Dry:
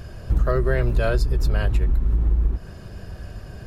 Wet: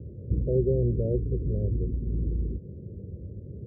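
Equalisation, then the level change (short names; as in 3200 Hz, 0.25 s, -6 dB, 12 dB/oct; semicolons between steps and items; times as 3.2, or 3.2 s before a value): HPF 72 Hz 24 dB/oct; steep low-pass 520 Hz 72 dB/oct; 0.0 dB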